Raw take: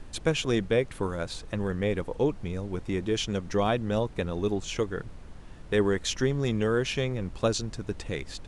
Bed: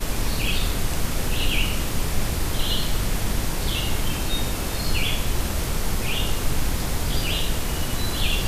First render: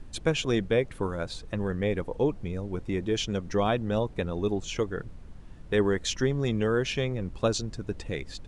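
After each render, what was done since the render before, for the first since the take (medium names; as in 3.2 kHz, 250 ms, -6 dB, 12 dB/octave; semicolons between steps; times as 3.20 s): noise reduction 6 dB, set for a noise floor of -45 dBFS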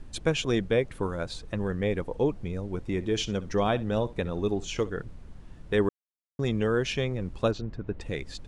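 2.87–4.90 s: flutter echo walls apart 11.1 m, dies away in 0.21 s; 5.89–6.39 s: mute; 7.51–8.01 s: low-pass 2.3 kHz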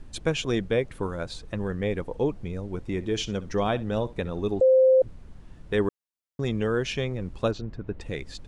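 4.61–5.02 s: bleep 521 Hz -14 dBFS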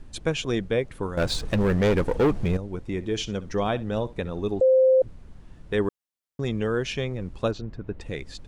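1.17–2.57 s: waveshaping leveller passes 3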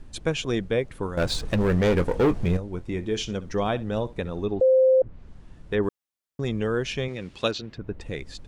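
1.59–3.36 s: doubling 23 ms -12 dB; 4.41–5.83 s: low-pass that closes with the level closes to 1.7 kHz, closed at -19 dBFS; 7.08–7.78 s: frequency weighting D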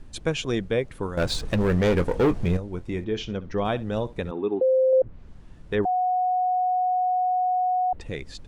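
3.04–3.65 s: distance through air 160 m; 4.31–4.93 s: cabinet simulation 250–3100 Hz, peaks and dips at 260 Hz +5 dB, 370 Hz +6 dB, 610 Hz -8 dB, 890 Hz +6 dB, 1.9 kHz -3 dB; 5.85–7.93 s: bleep 733 Hz -20 dBFS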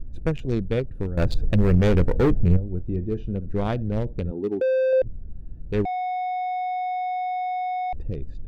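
local Wiener filter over 41 samples; bass shelf 120 Hz +11.5 dB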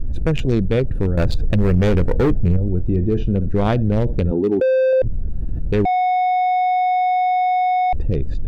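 level flattener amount 70%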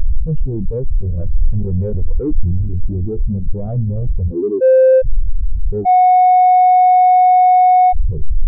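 waveshaping leveller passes 5; spectral contrast expander 2.5:1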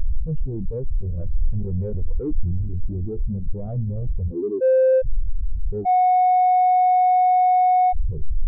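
trim -7 dB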